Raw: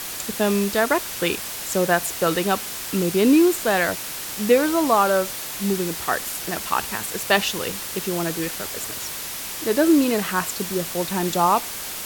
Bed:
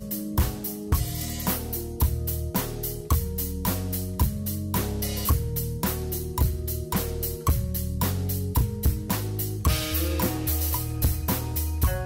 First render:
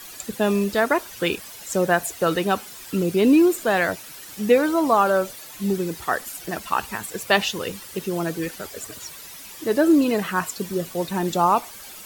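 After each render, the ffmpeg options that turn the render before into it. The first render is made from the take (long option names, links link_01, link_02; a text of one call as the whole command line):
ffmpeg -i in.wav -af "afftdn=noise_reduction=12:noise_floor=-32" out.wav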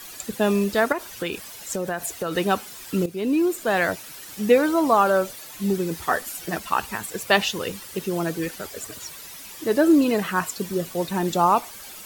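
ffmpeg -i in.wav -filter_complex "[0:a]asettb=1/sr,asplit=3[link_01][link_02][link_03];[link_01]atrim=end=0.924[link_04];[link_02]atrim=start=0.92:end=2.36,asetpts=PTS-STARTPTS,afade=type=in:duration=0.004:curve=qsin,afade=type=out:start_time=1.436:duration=0.004:curve=qsin,acompressor=threshold=-23dB:ratio=6:attack=3.2:release=140:knee=1:detection=peak[link_05];[link_03]atrim=start=2.356[link_06];[link_04][link_05]acrossfade=duration=0.004:curve1=hsin:curve2=qsin[link_07];[link_07][link_06]acrossfade=duration=0.004:curve1=qsin:curve2=hsin,asettb=1/sr,asplit=3[link_08][link_09][link_10];[link_08]atrim=end=5.904[link_11];[link_09]atrim=start=5.9:end=6.58,asetpts=PTS-STARTPTS,afade=type=in:duration=0.004:curve=qsin,afade=type=out:start_time=0.676:duration=0.004:curve=qsin,asplit=2[link_12][link_13];[link_13]adelay=12,volume=-6dB[link_14];[link_12][link_14]amix=inputs=2:normalize=0,atrim=end_sample=29988[link_15];[link_10]atrim=start=6.576[link_16];[link_11][link_15]acrossfade=duration=0.004:curve1=hsin:curve2=qsin[link_17];[link_17][link_16]acrossfade=duration=0.004:curve1=qsin:curve2=hsin,asplit=2[link_18][link_19];[link_18]atrim=end=3.06,asetpts=PTS-STARTPTS,afade=type=out:start_time=3.056:duration=0.004:curve=hsin:silence=0.211349[link_20];[link_19]atrim=start=3.06,asetpts=PTS-STARTPTS,afade=type=in:duration=0.82:silence=0.211349[link_21];[link_20][link_21]concat=n=2:v=0:a=1" out.wav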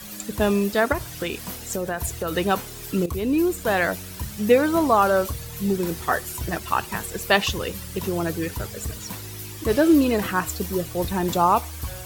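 ffmpeg -i in.wav -i bed.wav -filter_complex "[1:a]volume=-9dB[link_01];[0:a][link_01]amix=inputs=2:normalize=0" out.wav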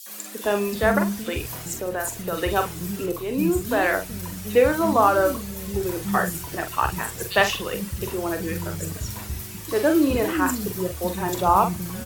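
ffmpeg -i in.wav -filter_complex "[0:a]asplit=2[link_01][link_02];[link_02]adelay=44,volume=-7.5dB[link_03];[link_01][link_03]amix=inputs=2:normalize=0,acrossover=split=250|3800[link_04][link_05][link_06];[link_05]adelay=60[link_07];[link_04]adelay=440[link_08];[link_08][link_07][link_06]amix=inputs=3:normalize=0" out.wav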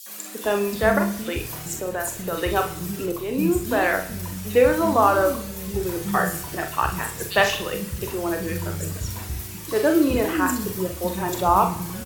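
ffmpeg -i in.wav -filter_complex "[0:a]asplit=2[link_01][link_02];[link_02]adelay=32,volume=-12dB[link_03];[link_01][link_03]amix=inputs=2:normalize=0,aecho=1:1:64|128|192|256|320:0.2|0.108|0.0582|0.0314|0.017" out.wav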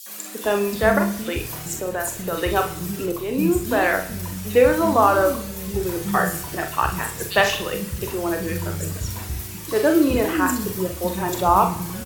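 ffmpeg -i in.wav -af "volume=1.5dB,alimiter=limit=-3dB:level=0:latency=1" out.wav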